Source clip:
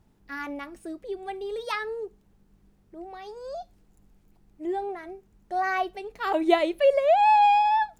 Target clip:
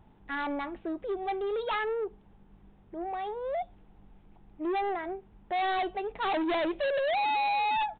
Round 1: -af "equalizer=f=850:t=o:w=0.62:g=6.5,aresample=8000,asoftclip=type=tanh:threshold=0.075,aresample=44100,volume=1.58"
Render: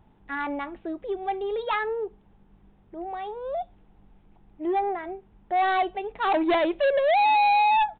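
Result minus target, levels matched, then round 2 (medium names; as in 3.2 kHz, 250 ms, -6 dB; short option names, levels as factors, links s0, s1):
saturation: distortion -4 dB
-af "equalizer=f=850:t=o:w=0.62:g=6.5,aresample=8000,asoftclip=type=tanh:threshold=0.0282,aresample=44100,volume=1.58"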